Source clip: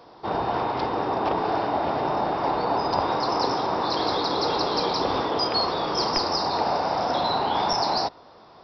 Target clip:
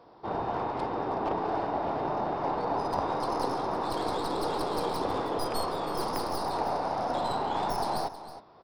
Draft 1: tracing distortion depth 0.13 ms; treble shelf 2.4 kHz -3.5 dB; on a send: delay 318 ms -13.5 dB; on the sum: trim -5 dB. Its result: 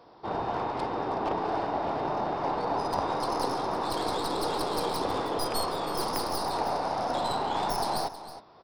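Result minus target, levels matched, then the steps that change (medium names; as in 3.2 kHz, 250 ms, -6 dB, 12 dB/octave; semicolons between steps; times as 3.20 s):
4 kHz band +3.5 dB
change: treble shelf 2.4 kHz -9.5 dB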